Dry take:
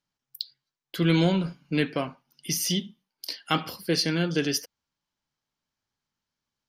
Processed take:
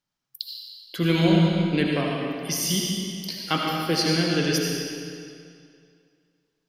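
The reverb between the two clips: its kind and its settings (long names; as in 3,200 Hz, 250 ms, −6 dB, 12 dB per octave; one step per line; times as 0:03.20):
comb and all-pass reverb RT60 2.3 s, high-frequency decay 0.9×, pre-delay 40 ms, DRR −1.5 dB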